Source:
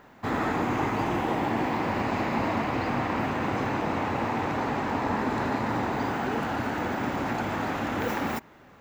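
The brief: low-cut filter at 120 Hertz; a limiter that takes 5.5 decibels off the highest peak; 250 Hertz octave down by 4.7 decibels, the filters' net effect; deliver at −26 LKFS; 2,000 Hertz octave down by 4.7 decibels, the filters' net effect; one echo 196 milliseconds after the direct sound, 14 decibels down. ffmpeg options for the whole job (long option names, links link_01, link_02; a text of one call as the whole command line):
ffmpeg -i in.wav -af "highpass=120,equalizer=frequency=250:width_type=o:gain=-5.5,equalizer=frequency=2000:width_type=o:gain=-6,alimiter=limit=-22.5dB:level=0:latency=1,aecho=1:1:196:0.2,volume=6dB" out.wav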